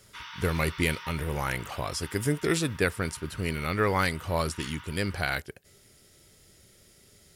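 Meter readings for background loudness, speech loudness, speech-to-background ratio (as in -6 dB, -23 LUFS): -45.0 LUFS, -29.5 LUFS, 15.5 dB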